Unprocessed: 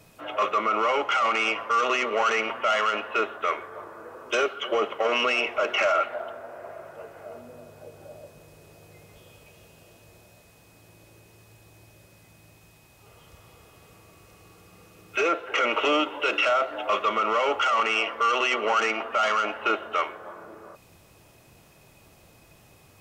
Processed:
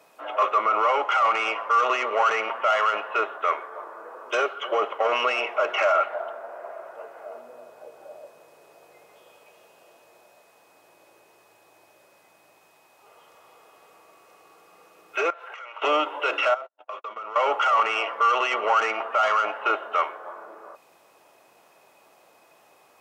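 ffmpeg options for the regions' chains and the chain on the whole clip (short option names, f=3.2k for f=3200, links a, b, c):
-filter_complex "[0:a]asettb=1/sr,asplit=3[a][b][c];[a]atrim=end=15.304[d];[b]atrim=start=15.3:end=15.82,asetpts=PTS-STARTPTS,afade=t=in:d=0.004:c=qsin,afade=t=out:st=0.516:d=0.004:c=qsin,highpass=800,acompressor=threshold=-37dB:ratio=16:attack=3.2:release=140:knee=1:detection=peak[e];[c]atrim=start=15.816[f];[d][e]acrossfade=d=0.004:c1=hsin:c2=qsin[g];[g][f]acrossfade=d=0.004:c1=qsin:c2=hsin,asettb=1/sr,asplit=3[h][i][j];[h]atrim=end=16.544[k];[i]atrim=start=16.54:end=17.36,asetpts=PTS-STARTPTS,afade=t=in:d=0.004:c=qsin,afade=t=out:st=0.816:d=0.004:c=qsin,bandreject=f=2.1k:w=18,agate=range=-59dB:threshold=-29dB:ratio=16:release=100:detection=peak,acompressor=threshold=-36dB:ratio=5:attack=3.2:release=140:knee=1:detection=peak[l];[j]atrim=start=17.356[m];[k][l]acrossfade=d=0.004:c1=hsin:c2=qsin[n];[n][m]acrossfade=d=0.004:c1=qsin:c2=hsin,highpass=350,equalizer=f=890:t=o:w=2.1:g=9.5,volume=-5dB"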